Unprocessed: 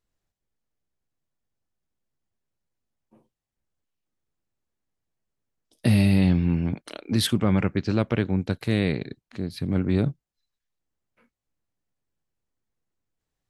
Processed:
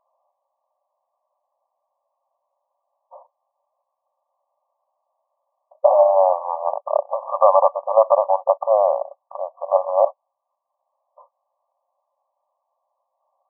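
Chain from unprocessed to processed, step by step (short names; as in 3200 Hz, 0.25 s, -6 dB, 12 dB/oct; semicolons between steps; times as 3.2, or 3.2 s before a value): brick-wall FIR band-pass 530–1200 Hz; maximiser +25.5 dB; gain -1 dB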